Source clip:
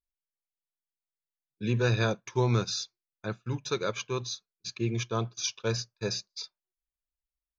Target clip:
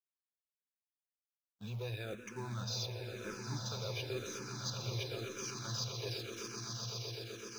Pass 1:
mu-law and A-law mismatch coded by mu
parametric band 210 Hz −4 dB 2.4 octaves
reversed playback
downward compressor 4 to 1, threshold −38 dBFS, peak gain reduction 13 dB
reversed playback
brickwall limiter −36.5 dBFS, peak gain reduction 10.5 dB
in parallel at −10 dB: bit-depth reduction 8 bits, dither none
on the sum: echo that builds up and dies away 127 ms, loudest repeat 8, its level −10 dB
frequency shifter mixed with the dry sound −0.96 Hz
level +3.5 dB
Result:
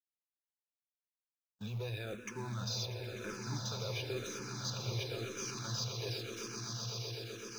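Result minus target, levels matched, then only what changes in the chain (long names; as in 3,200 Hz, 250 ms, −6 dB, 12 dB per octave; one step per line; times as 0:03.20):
downward compressor: peak gain reduction −5 dB
change: downward compressor 4 to 1, threshold −44.5 dBFS, peak gain reduction 17.5 dB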